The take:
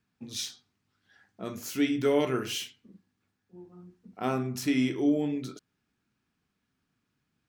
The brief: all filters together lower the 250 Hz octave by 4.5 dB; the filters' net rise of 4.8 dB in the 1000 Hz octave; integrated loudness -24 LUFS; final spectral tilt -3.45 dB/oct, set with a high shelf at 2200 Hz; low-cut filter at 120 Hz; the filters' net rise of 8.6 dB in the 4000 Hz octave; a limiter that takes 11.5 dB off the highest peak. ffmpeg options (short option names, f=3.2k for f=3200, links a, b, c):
-af "highpass=120,equalizer=f=250:t=o:g=-5.5,equalizer=f=1k:t=o:g=5,highshelf=f=2.2k:g=8,equalizer=f=4k:t=o:g=3.5,volume=9.5dB,alimiter=limit=-13dB:level=0:latency=1"